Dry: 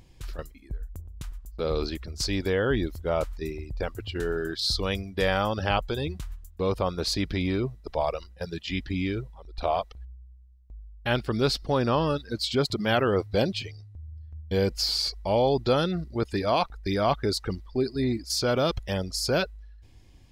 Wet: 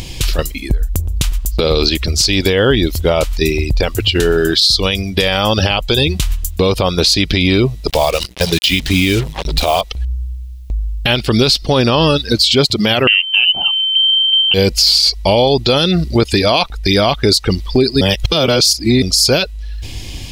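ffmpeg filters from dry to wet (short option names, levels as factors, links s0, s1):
-filter_complex "[0:a]asettb=1/sr,asplit=3[s0][s1][s2];[s0]atrim=end=7.884[s3];[s1]atrim=start=7.88:end=9.81,asetpts=PTS-STARTPTS,afade=t=in:d=0.004:c=qsin,afade=t=out:st=1.926:d=0.004:c=qsin,acrusher=bits=6:mix=0:aa=0.5[s4];[s2]atrim=start=9.806[s5];[s3][s4]acrossfade=d=0.004:c1=hsin:c2=qsin[s6];[s6][s5]acrossfade=d=0.004:c1=qsin:c2=hsin,asettb=1/sr,asplit=3[s7][s8][s9];[s7]atrim=end=13.074[s10];[s8]atrim=start=13.07:end=14.54,asetpts=PTS-STARTPTS,afade=t=in:d=0.004:c=qsin,afade=t=out:st=1.466:d=0.004:c=qsin,lowpass=f=2700:t=q:w=0.5098,lowpass=f=2700:t=q:w=0.6013,lowpass=f=2700:t=q:w=0.9,lowpass=f=2700:t=q:w=2.563,afreqshift=-3200[s11];[s9]atrim=start=14.536[s12];[s10][s11]acrossfade=d=0.004:c1=hsin:c2=qsin[s13];[s13][s12]acrossfade=d=0.004:c1=qsin:c2=hsin,asplit=3[s14][s15][s16];[s14]atrim=end=18.012[s17];[s15]atrim=start=18.008:end=19.022,asetpts=PTS-STARTPTS,areverse[s18];[s16]atrim=start=19.018[s19];[s17][s18]acrossfade=d=0.004:c1=hsin:c2=hsin[s20];[s20][s19]acrossfade=d=0.004:c1=hsin:c2=hsin,highshelf=f=2100:t=q:w=1.5:g=7.5,acompressor=threshold=0.01:ratio=2.5,alimiter=level_in=22.4:limit=0.891:release=50:level=0:latency=1,volume=0.891"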